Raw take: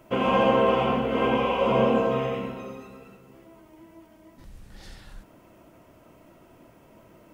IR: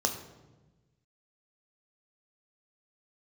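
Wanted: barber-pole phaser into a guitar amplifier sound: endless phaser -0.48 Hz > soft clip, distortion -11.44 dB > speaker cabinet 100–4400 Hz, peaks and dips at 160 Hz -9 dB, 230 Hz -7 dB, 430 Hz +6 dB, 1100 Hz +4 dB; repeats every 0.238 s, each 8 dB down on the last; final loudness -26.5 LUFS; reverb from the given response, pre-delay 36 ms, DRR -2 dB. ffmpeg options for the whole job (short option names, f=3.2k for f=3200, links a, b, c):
-filter_complex "[0:a]aecho=1:1:238|476|714|952|1190:0.398|0.159|0.0637|0.0255|0.0102,asplit=2[a][b];[1:a]atrim=start_sample=2205,adelay=36[c];[b][c]afir=irnorm=-1:irlink=0,volume=-6dB[d];[a][d]amix=inputs=2:normalize=0,asplit=2[e][f];[f]afreqshift=-0.48[g];[e][g]amix=inputs=2:normalize=1,asoftclip=threshold=-18.5dB,highpass=100,equalizer=f=160:t=q:w=4:g=-9,equalizer=f=230:t=q:w=4:g=-7,equalizer=f=430:t=q:w=4:g=6,equalizer=f=1.1k:t=q:w=4:g=4,lowpass=f=4.4k:w=0.5412,lowpass=f=4.4k:w=1.3066,volume=-4dB"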